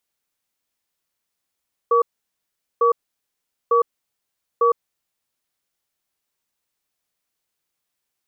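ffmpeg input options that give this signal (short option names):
-f lavfi -i "aevalsrc='0.168*(sin(2*PI*471*t)+sin(2*PI*1140*t))*clip(min(mod(t,0.9),0.11-mod(t,0.9))/0.005,0,1)':d=2.93:s=44100"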